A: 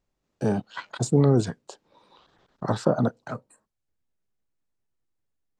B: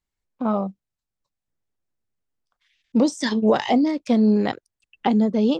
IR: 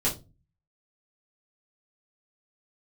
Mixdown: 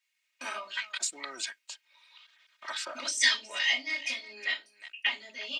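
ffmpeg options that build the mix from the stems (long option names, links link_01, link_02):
-filter_complex "[0:a]volume=0dB,asplit=2[link_01][link_02];[1:a]acompressor=threshold=-24dB:ratio=6,volume=0dB,asplit=3[link_03][link_04][link_05];[link_04]volume=-6dB[link_06];[link_05]volume=-14dB[link_07];[link_02]apad=whole_len=246891[link_08];[link_03][link_08]sidechaingate=range=-33dB:threshold=-51dB:ratio=16:detection=peak[link_09];[2:a]atrim=start_sample=2205[link_10];[link_06][link_10]afir=irnorm=-1:irlink=0[link_11];[link_07]aecho=0:1:365:1[link_12];[link_01][link_09][link_11][link_12]amix=inputs=4:normalize=0,highpass=frequency=2300:width_type=q:width=3.1,aecho=1:1:3.2:0.85"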